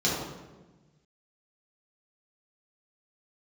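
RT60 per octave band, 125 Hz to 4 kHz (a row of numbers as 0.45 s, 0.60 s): 2.0 s, 1.6 s, 1.3 s, 1.1 s, 0.95 s, 0.80 s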